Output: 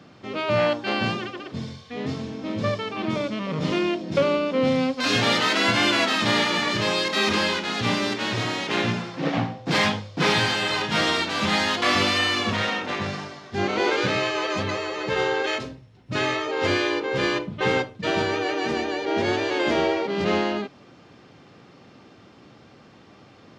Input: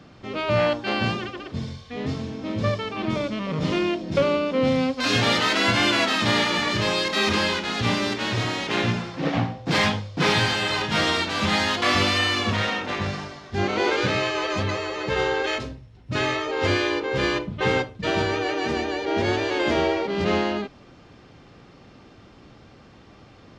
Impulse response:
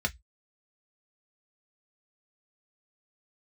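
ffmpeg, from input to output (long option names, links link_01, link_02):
-af "highpass=120"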